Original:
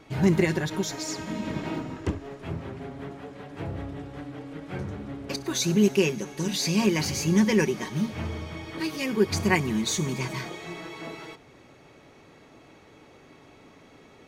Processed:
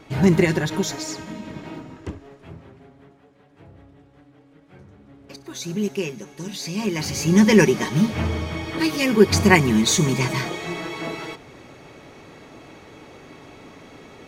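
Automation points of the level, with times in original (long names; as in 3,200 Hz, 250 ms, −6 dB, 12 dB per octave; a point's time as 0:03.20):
0:00.89 +5 dB
0:01.47 −4 dB
0:02.18 −4 dB
0:03.21 −13.5 dB
0:04.91 −13.5 dB
0:05.78 −4 dB
0:06.72 −4 dB
0:07.54 +8.5 dB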